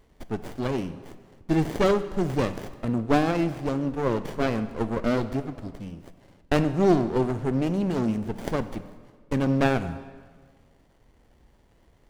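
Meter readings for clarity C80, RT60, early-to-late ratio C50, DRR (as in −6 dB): 14.5 dB, 1.6 s, 13.0 dB, 11.0 dB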